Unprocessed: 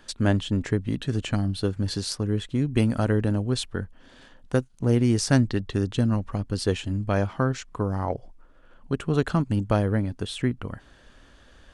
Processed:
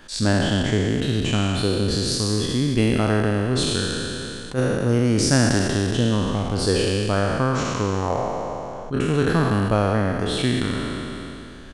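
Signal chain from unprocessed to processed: spectral trails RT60 2.42 s; in parallel at +1 dB: compressor, threshold -33 dBFS, peak gain reduction 19.5 dB; on the sum: speakerphone echo 0.12 s, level -13 dB; attack slew limiter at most 230 dB/s; gain -1 dB

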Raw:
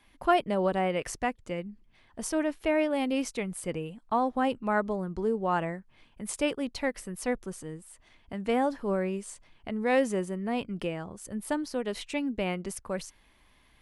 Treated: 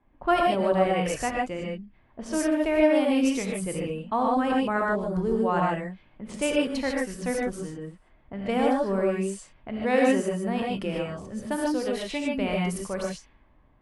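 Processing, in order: non-linear reverb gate 0.17 s rising, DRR -1.5 dB; low-pass opened by the level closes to 850 Hz, open at -26 dBFS

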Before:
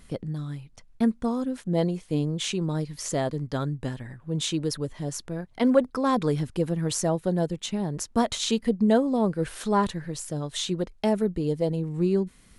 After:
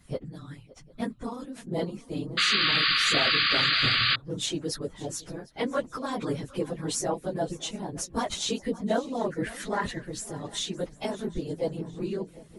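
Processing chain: phase scrambler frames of 50 ms; 9.19–10 bell 1900 Hz +13 dB 0.44 oct; swung echo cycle 0.753 s, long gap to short 3:1, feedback 37%, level -19 dB; harmonic-percussive split harmonic -11 dB; 3.78–4.37 bell 120 Hz +13.5 dB 0.27 oct; 2.37–4.16 painted sound noise 1100–4900 Hz -24 dBFS

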